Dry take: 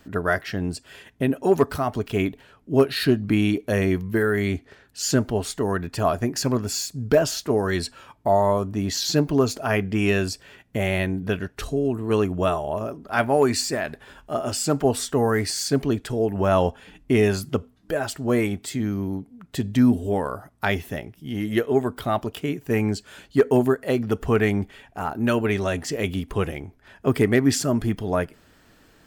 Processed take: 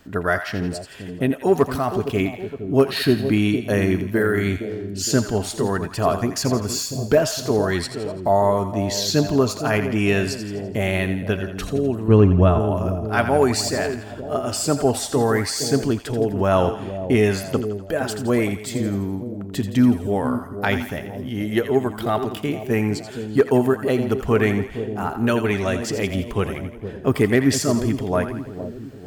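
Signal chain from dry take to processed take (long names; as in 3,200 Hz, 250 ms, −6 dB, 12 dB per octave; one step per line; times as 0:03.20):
0:12.08–0:12.60: RIAA equalisation playback
echo with a time of its own for lows and highs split 700 Hz, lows 464 ms, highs 84 ms, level −9.5 dB
level +1.5 dB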